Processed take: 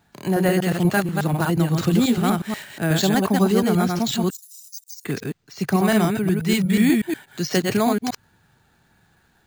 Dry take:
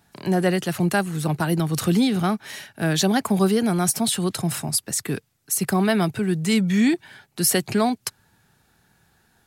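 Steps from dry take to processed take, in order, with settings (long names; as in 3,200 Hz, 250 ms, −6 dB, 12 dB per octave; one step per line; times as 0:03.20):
delay that plays each chunk backwards 121 ms, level −2.5 dB
bad sample-rate conversion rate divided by 4×, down filtered, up hold
0:04.30–0:05.05: inverse Chebyshev high-pass filter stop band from 1,200 Hz, stop band 80 dB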